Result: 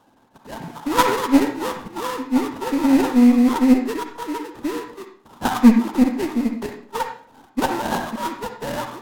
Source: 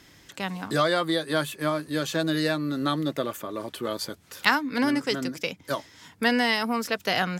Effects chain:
three sine waves on the formant tracks
in parallel at +2 dB: downward compressor, threshold −36 dBFS, peak gain reduction 20 dB
on the sum: sample-rate reduction 2,800 Hz, jitter 20%
hollow resonant body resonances 290/1,100 Hz, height 12 dB, ringing for 25 ms
harmonic generator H 4 −19 dB, 7 −26 dB, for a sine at 1 dBFS
speed change −18%
on a send at −4.5 dB: convolution reverb RT60 0.55 s, pre-delay 46 ms
on the sum: level −2.5 dB

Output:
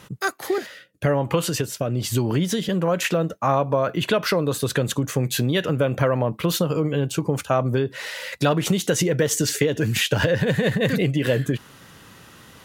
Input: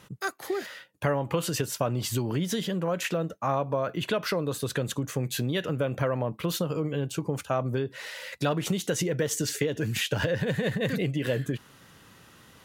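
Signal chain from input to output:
0:00.58–0:02.69: rotating-speaker cabinet horn 1 Hz
level +7 dB

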